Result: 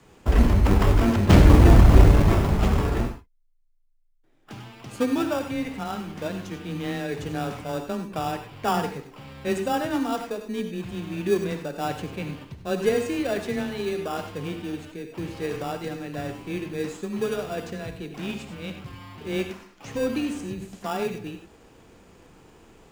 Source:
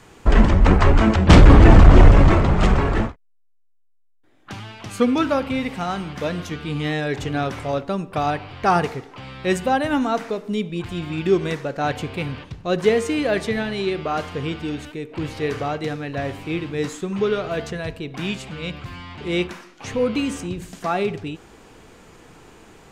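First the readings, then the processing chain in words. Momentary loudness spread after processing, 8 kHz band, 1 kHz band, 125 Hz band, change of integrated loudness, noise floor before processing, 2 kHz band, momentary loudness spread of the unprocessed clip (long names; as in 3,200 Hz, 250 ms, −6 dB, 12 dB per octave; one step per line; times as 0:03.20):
18 LU, −2.5 dB, −6.5 dB, −3.5 dB, −4.5 dB, −57 dBFS, −7.0 dB, 18 LU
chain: frequency shifter +14 Hz
in parallel at −5 dB: decimation without filtering 21×
on the sum: reverb whose tail is shaped and stops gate 120 ms rising, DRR 7.5 dB
level −9 dB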